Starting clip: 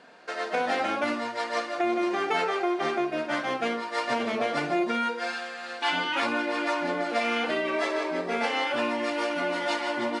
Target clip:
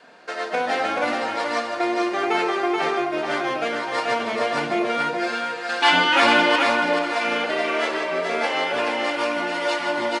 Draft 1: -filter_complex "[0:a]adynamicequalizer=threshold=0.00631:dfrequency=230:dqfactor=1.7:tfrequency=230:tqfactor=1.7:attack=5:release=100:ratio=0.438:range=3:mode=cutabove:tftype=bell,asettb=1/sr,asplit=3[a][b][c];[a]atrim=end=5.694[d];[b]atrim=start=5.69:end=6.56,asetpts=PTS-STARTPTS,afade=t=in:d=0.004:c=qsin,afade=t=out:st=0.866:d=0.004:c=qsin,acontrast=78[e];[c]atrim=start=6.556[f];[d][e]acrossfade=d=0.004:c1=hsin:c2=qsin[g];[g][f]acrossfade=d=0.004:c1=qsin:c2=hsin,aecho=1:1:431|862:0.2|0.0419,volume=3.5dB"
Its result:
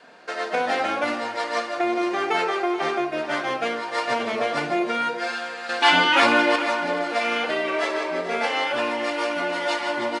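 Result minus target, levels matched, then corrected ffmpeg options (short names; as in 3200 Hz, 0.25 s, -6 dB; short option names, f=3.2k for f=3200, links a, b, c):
echo-to-direct -10 dB
-filter_complex "[0:a]adynamicequalizer=threshold=0.00631:dfrequency=230:dqfactor=1.7:tfrequency=230:tqfactor=1.7:attack=5:release=100:ratio=0.438:range=3:mode=cutabove:tftype=bell,asettb=1/sr,asplit=3[a][b][c];[a]atrim=end=5.694[d];[b]atrim=start=5.69:end=6.56,asetpts=PTS-STARTPTS,afade=t=in:d=0.004:c=qsin,afade=t=out:st=0.866:d=0.004:c=qsin,acontrast=78[e];[c]atrim=start=6.556[f];[d][e]acrossfade=d=0.004:c1=hsin:c2=qsin[g];[g][f]acrossfade=d=0.004:c1=qsin:c2=hsin,aecho=1:1:431|862|1293:0.631|0.133|0.0278,volume=3.5dB"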